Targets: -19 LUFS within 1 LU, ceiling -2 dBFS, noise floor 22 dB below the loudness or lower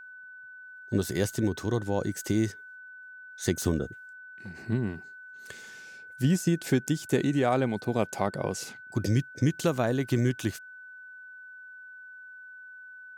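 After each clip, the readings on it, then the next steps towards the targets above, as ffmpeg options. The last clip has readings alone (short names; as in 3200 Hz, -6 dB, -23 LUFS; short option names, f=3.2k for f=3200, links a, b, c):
steady tone 1500 Hz; tone level -44 dBFS; loudness -29.0 LUFS; peak -11.5 dBFS; loudness target -19.0 LUFS
-> -af "bandreject=f=1.5k:w=30"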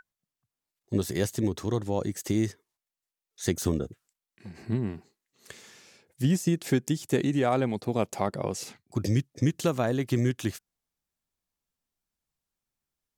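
steady tone none; loudness -29.0 LUFS; peak -11.0 dBFS; loudness target -19.0 LUFS
-> -af "volume=10dB,alimiter=limit=-2dB:level=0:latency=1"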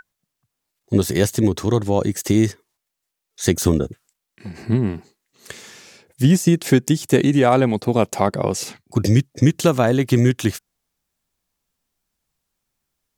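loudness -19.0 LUFS; peak -2.0 dBFS; noise floor -81 dBFS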